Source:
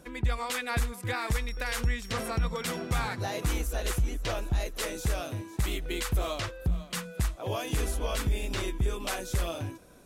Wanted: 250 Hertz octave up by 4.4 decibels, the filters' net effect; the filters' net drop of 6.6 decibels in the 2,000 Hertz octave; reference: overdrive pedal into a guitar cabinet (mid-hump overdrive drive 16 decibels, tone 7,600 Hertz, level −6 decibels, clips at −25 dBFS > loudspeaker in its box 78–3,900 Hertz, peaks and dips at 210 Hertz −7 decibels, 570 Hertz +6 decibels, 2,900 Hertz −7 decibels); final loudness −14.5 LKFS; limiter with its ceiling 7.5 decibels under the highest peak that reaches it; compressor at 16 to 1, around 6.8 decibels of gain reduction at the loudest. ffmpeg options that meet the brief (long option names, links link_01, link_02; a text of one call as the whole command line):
ffmpeg -i in.wav -filter_complex "[0:a]equalizer=frequency=250:width_type=o:gain=9,equalizer=frequency=2000:width_type=o:gain=-7.5,acompressor=threshold=-28dB:ratio=16,alimiter=level_in=1dB:limit=-24dB:level=0:latency=1,volume=-1dB,asplit=2[link_01][link_02];[link_02]highpass=frequency=720:poles=1,volume=16dB,asoftclip=type=tanh:threshold=-25dB[link_03];[link_01][link_03]amix=inputs=2:normalize=0,lowpass=frequency=7600:poles=1,volume=-6dB,highpass=78,equalizer=frequency=210:width_type=q:width=4:gain=-7,equalizer=frequency=570:width_type=q:width=4:gain=6,equalizer=frequency=2900:width_type=q:width=4:gain=-7,lowpass=frequency=3900:width=0.5412,lowpass=frequency=3900:width=1.3066,volume=20dB" out.wav